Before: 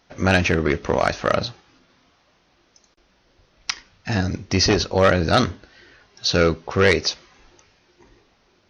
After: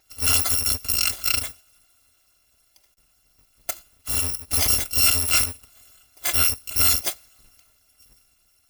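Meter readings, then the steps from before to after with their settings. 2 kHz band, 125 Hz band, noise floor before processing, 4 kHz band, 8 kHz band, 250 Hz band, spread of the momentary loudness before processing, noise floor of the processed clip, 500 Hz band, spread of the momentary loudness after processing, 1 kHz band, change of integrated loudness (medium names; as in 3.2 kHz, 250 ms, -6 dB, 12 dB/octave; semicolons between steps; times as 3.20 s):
-7.0 dB, -10.0 dB, -62 dBFS, +0.5 dB, +10.0 dB, -17.5 dB, 12 LU, -64 dBFS, -21.0 dB, 15 LU, -11.0 dB, +1.0 dB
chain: bit-reversed sample order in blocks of 256 samples; trim -2.5 dB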